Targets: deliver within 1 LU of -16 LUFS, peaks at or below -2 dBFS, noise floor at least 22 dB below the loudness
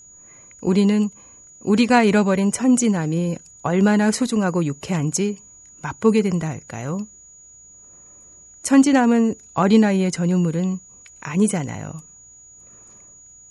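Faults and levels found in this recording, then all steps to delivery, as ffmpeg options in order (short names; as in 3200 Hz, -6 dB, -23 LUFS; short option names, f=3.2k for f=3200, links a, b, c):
steady tone 6800 Hz; tone level -44 dBFS; loudness -19.5 LUFS; peak -4.0 dBFS; loudness target -16.0 LUFS
-> -af "bandreject=f=6.8k:w=30"
-af "volume=3.5dB,alimiter=limit=-2dB:level=0:latency=1"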